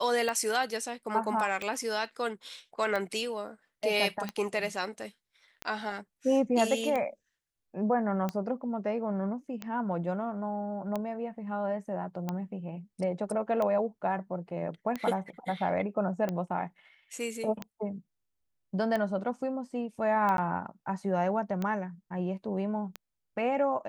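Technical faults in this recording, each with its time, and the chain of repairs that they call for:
tick 45 rpm -19 dBFS
20.37–20.38 s: dropout 12 ms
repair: de-click; interpolate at 20.37 s, 12 ms

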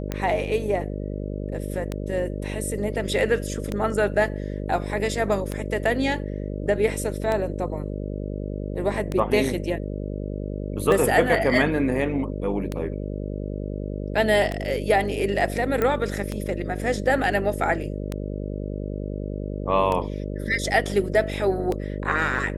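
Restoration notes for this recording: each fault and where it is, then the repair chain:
buzz 50 Hz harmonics 12 -30 dBFS
tick 33 1/3 rpm -13 dBFS
15.82 s: pop -11 dBFS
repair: de-click; de-hum 50 Hz, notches 12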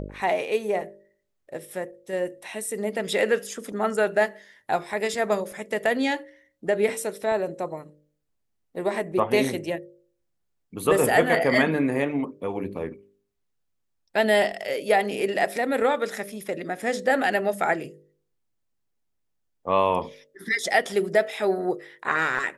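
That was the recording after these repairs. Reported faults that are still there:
nothing left

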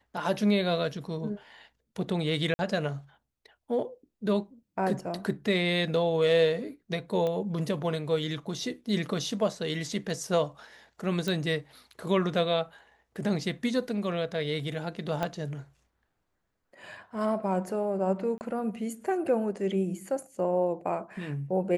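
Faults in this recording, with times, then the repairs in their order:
2.54–2.59 s: dropout 50 ms
7.27 s: pop -20 dBFS
11.28 s: pop -17 dBFS
15.23 s: pop -16 dBFS
18.38–18.41 s: dropout 29 ms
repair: de-click; interpolate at 2.54 s, 50 ms; interpolate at 18.38 s, 29 ms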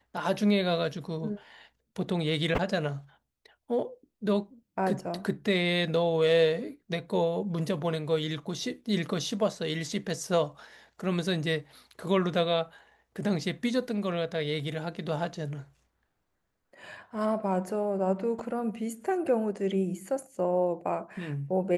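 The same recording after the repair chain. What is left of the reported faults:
7.27 s: pop
15.23 s: pop

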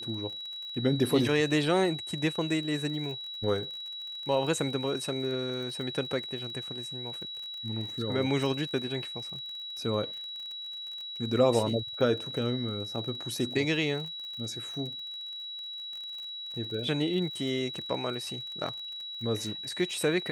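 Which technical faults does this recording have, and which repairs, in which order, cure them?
crackle 34 per s -38 dBFS
whine 3.9 kHz -37 dBFS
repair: de-click; band-stop 3.9 kHz, Q 30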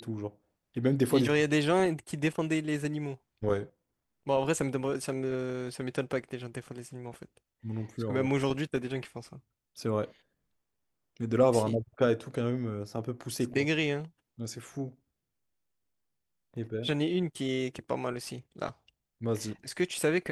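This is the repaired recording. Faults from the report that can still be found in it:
nothing left

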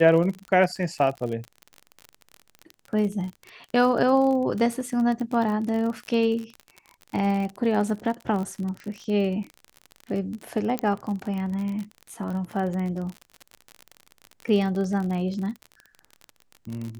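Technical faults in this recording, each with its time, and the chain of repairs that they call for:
crackle 40 per s -30 dBFS
10.79 s: pop -11 dBFS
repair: de-click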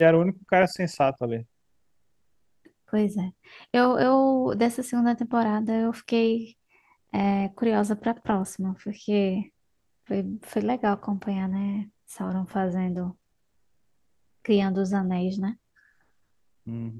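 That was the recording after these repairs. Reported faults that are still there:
nothing left

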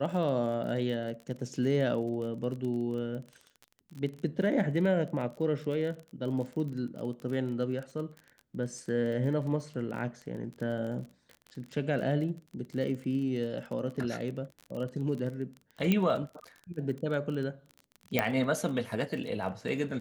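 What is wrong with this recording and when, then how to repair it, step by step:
crackle 28 per s -37 dBFS
15.92 s: pop -14 dBFS
18.19 s: pop -11 dBFS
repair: de-click

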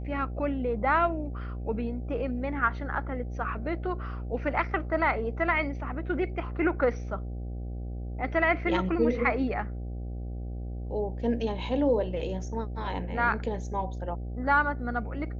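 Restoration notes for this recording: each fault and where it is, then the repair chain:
buzz 60 Hz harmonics 13 -35 dBFS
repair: de-hum 60 Hz, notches 13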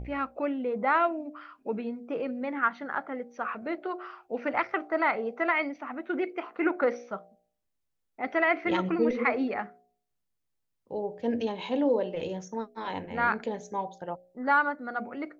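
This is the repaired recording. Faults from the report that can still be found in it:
nothing left

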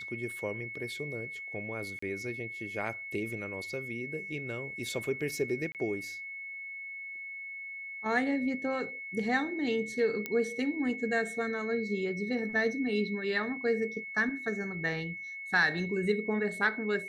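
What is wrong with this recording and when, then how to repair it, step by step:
whine 2.2 kHz -39 dBFS
1.99–2.02 s: dropout 34 ms
5.72–5.75 s: dropout 28 ms
10.26 s: pop -19 dBFS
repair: de-click; band-stop 2.2 kHz, Q 30; interpolate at 1.99 s, 34 ms; interpolate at 5.72 s, 28 ms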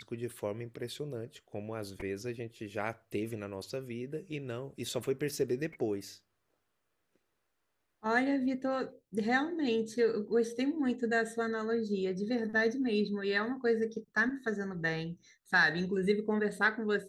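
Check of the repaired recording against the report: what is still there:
nothing left

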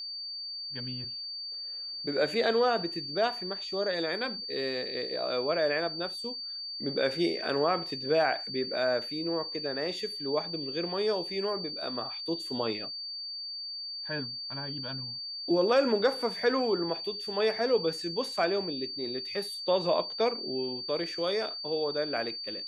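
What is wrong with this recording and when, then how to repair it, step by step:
whine 4.6 kHz -36 dBFS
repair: band-stop 4.6 kHz, Q 30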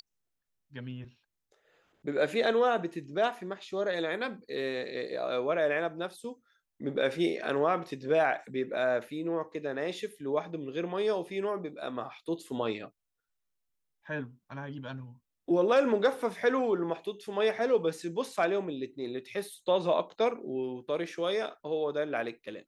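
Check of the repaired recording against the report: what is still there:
nothing left

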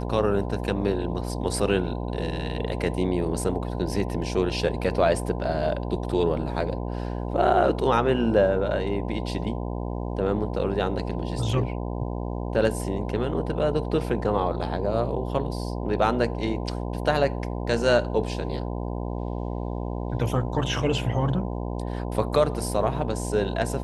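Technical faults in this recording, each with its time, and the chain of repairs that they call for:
buzz 60 Hz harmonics 17 -30 dBFS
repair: de-hum 60 Hz, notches 17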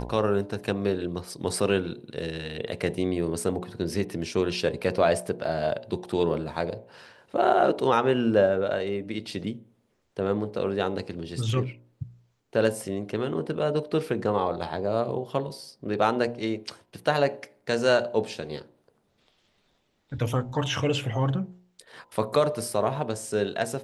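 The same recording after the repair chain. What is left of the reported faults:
nothing left

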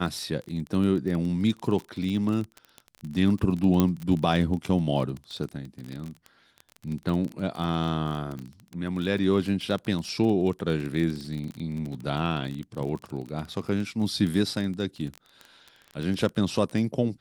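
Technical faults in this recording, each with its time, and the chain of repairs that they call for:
crackle 25 per s -30 dBFS
3.80 s: pop -9 dBFS
8.39 s: pop -25 dBFS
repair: de-click

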